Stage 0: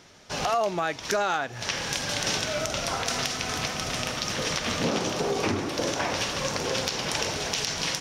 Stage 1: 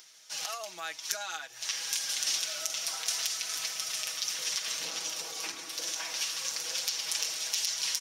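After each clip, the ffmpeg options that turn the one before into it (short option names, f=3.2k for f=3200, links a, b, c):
-af "aderivative,aecho=1:1:6.2:0.79,acompressor=mode=upward:threshold=-51dB:ratio=2.5"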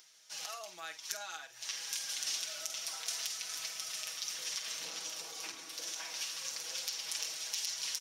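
-filter_complex "[0:a]asplit=2[a][b];[b]adelay=49,volume=-11.5dB[c];[a][c]amix=inputs=2:normalize=0,volume=-6.5dB"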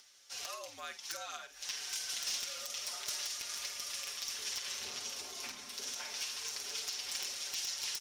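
-af "afreqshift=-78,aeval=exprs='0.0398*(abs(mod(val(0)/0.0398+3,4)-2)-1)':c=same,aeval=exprs='0.0398*(cos(1*acos(clip(val(0)/0.0398,-1,1)))-cos(1*PI/2))+0.002*(cos(2*acos(clip(val(0)/0.0398,-1,1)))-cos(2*PI/2))+0.000631*(cos(4*acos(clip(val(0)/0.0398,-1,1)))-cos(4*PI/2))':c=same"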